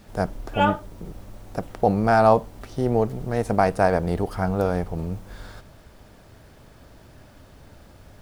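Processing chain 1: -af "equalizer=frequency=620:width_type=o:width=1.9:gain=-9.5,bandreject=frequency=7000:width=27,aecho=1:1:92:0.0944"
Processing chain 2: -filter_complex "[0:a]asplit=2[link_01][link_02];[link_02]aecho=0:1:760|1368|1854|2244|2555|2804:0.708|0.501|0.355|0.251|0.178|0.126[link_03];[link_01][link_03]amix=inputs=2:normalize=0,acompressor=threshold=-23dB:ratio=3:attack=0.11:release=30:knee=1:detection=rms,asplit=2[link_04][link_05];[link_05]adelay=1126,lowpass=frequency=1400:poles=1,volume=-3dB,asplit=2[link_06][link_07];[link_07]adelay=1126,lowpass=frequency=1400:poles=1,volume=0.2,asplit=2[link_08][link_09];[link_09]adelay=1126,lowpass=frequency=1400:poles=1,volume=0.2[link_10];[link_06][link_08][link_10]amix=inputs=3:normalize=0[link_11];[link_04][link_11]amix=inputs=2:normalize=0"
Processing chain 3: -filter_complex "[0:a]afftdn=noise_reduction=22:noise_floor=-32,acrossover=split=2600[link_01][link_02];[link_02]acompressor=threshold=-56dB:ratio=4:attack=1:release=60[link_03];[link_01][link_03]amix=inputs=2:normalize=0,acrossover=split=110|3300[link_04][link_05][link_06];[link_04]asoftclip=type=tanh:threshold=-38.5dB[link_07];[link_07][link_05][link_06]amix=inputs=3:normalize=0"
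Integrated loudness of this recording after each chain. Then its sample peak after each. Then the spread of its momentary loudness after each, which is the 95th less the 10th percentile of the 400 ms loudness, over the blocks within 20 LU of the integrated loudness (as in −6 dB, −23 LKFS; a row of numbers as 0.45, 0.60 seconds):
−28.0, −27.5, −23.0 LKFS; −11.0, −14.0, −3.5 dBFS; 18, 8, 17 LU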